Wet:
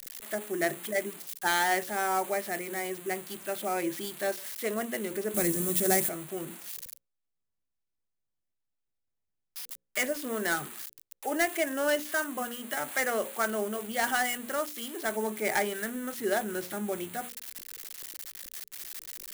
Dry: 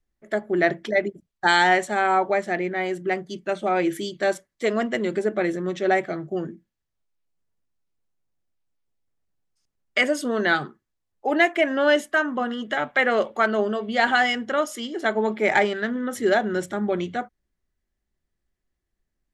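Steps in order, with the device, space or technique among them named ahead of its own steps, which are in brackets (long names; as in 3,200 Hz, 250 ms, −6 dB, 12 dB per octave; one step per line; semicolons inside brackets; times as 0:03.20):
budget class-D amplifier (gap after every zero crossing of 0.099 ms; spike at every zero crossing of −16 dBFS)
mains-hum notches 60/120/180/240/300/360/420/480/540 Hz
0:05.34–0:06.09: bass and treble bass +15 dB, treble +13 dB
level −8.5 dB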